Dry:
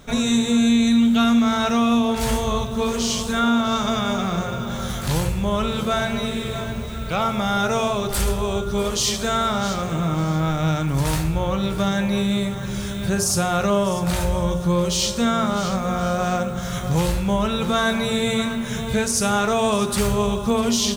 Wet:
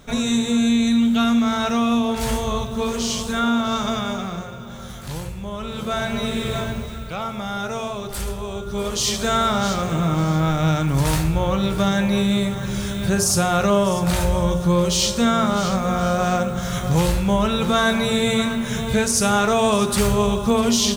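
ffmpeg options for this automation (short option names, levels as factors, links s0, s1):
-af "volume=8.41,afade=t=out:st=3.88:d=0.65:silence=0.421697,afade=t=in:st=5.59:d=0.97:silence=0.266073,afade=t=out:st=6.56:d=0.58:silence=0.354813,afade=t=in:st=8.57:d=0.76:silence=0.398107"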